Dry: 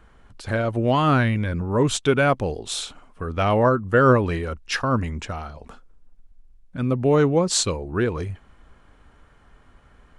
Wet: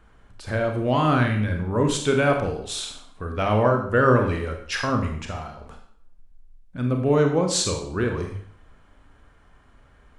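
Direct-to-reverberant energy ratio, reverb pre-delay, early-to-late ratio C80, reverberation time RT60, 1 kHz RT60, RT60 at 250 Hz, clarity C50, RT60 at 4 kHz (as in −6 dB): 3.0 dB, 28 ms, 9.5 dB, 0.60 s, 0.60 s, 0.60 s, 6.0 dB, 0.55 s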